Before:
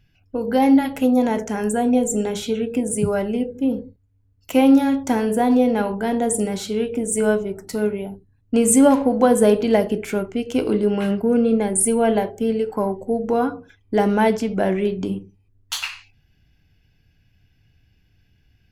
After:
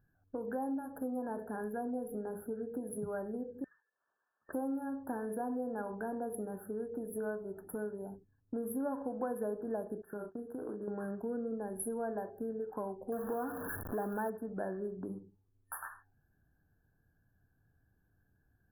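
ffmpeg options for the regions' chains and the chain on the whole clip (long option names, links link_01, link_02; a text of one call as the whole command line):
ffmpeg -i in.wav -filter_complex "[0:a]asettb=1/sr,asplit=3[link_01][link_02][link_03];[link_01]atrim=end=3.644[link_04];[link_02]atrim=start=3.64:end=4.53,asetpts=PTS-STARTPTS,afade=type=in:duration=0.004:curve=qsin,afade=type=out:start_time=0.886:duration=0.004:curve=qsin,acompressor=mode=upward:threshold=-29dB:ratio=2.5:attack=3.2:release=140:knee=2.83:detection=peak,lowpass=frequency=2200:width_type=q:width=0.5098,lowpass=frequency=2200:width_type=q:width=0.6013,lowpass=frequency=2200:width_type=q:width=0.9,lowpass=frequency=2200:width_type=q:width=2.563,afreqshift=-2600[link_05];[link_03]atrim=start=4.526[link_06];[link_04][link_05]acrossfade=duration=0.004:curve1=hsin:curve2=qsin[link_07];[link_07][link_06]acrossfade=duration=0.004:curve1=qsin:curve2=hsin,asettb=1/sr,asplit=3[link_08][link_09][link_10];[link_08]atrim=end=10.024[link_11];[link_09]atrim=start=10.02:end=10.88,asetpts=PTS-STARTPTS,afade=type=in:duration=0.004:curve=qsin,afade=type=out:start_time=0.856:duration=0.004:curve=qsin,agate=range=-33dB:threshold=-26dB:ratio=3:release=100:detection=peak,asplit=2[link_12][link_13];[link_13]adelay=34,volume=-7dB[link_14];[link_12][link_14]amix=inputs=2:normalize=0,atrim=end_sample=37926,acompressor=threshold=-26dB:ratio=6:attack=3.2:release=140:knee=1:detection=peak[link_15];[link_10]atrim=start=10.876[link_16];[link_11][link_15]acrossfade=duration=0.004:curve1=hsin:curve2=qsin[link_17];[link_17][link_16]acrossfade=duration=0.004:curve1=qsin:curve2=hsin,asettb=1/sr,asplit=3[link_18][link_19][link_20];[link_18]atrim=end=13.124[link_21];[link_19]atrim=start=13.12:end=14.3,asetpts=PTS-STARTPTS,afade=type=in:duration=0.004:curve=qsin,afade=type=out:start_time=1.176:duration=0.004:curve=qsin,aeval=exprs='val(0)+0.5*0.075*sgn(val(0))':channel_layout=same,highshelf=frequency=8200:gain=7[link_22];[link_20]atrim=start=14.296[link_23];[link_21][link_22]acrossfade=duration=0.004:curve1=hsin:curve2=qsin[link_24];[link_24][link_23]acrossfade=duration=0.004:curve1=qsin:curve2=hsin,afftfilt=real='re*(1-between(b*sr/4096,1800,10000))':imag='im*(1-between(b*sr/4096,1800,10000))':win_size=4096:overlap=0.75,acompressor=threshold=-30dB:ratio=3,lowshelf=frequency=180:gain=-9.5,volume=-6.5dB" out.wav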